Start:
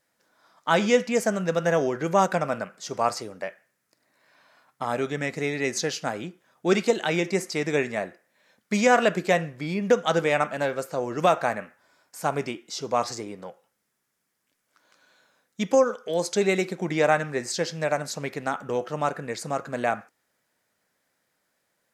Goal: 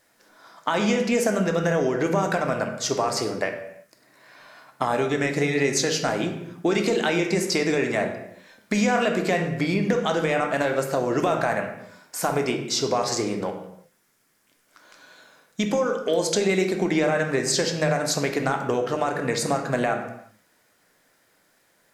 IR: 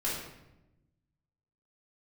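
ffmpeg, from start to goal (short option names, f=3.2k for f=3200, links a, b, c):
-filter_complex "[0:a]alimiter=limit=-16.5dB:level=0:latency=1:release=18,acompressor=threshold=-30dB:ratio=6,bandreject=f=50:t=h:w=6,bandreject=f=100:t=h:w=6,bandreject=f=150:t=h:w=6,bandreject=f=200:t=h:w=6,asplit=2[a][b];[1:a]atrim=start_sample=2205,afade=t=out:st=0.42:d=0.01,atrim=end_sample=18963[c];[b][c]afir=irnorm=-1:irlink=0,volume=-8dB[d];[a][d]amix=inputs=2:normalize=0,volume=7.5dB"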